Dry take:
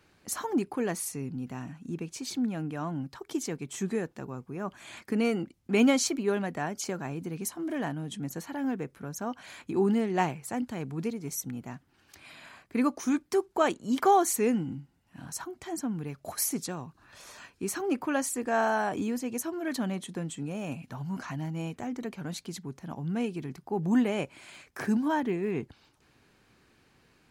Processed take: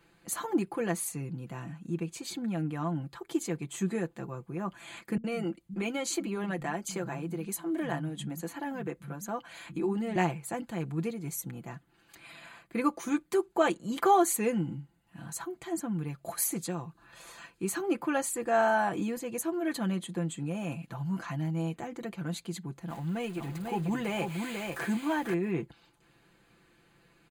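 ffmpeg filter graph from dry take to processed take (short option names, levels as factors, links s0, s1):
-filter_complex "[0:a]asettb=1/sr,asplit=3[s0][s1][s2];[s0]atrim=end=5.174[s3];[s1]atrim=start=5.17:end=10.16,asetpts=PTS-STARTPTS,afade=t=in:d=0.004:c=qsin,afade=t=out:st=4.986:d=0.004:c=qsin,acompressor=threshold=0.0501:ratio=6:attack=3.2:release=140:knee=1:detection=peak,acrossover=split=160[s4][s5];[s5]adelay=70[s6];[s4][s6]amix=inputs=2:normalize=0,atrim=end_sample=220059[s7];[s2]atrim=start=10.156[s8];[s3][s7]acrossfade=d=0.004:c1=hsin:c2=qsin[s9];[s9][s8]acrossfade=d=0.004:c1=qsin:c2=hsin,asettb=1/sr,asplit=3[s10][s11][s12];[s10]atrim=end=22.884[s13];[s11]atrim=start=22.88:end=25.34,asetpts=PTS-STARTPTS,afade=t=in:d=0.004:c=qsin,afade=t=out:st=2.456:d=0.004:c=qsin,aeval=exprs='val(0)+0.5*0.0075*sgn(val(0))':c=same,lowshelf=f=390:g=-5,aecho=1:1:493:0.596,atrim=end_sample=108486[s14];[s12]atrim=start=25.336[s15];[s13][s14]acrossfade=d=0.004:c1=hsin:c2=qsin[s16];[s16][s15]acrossfade=d=0.004:c1=qsin:c2=hsin,equalizer=f=5500:w=6.8:g=-14.5,aecho=1:1:5.9:0.69,volume=0.841"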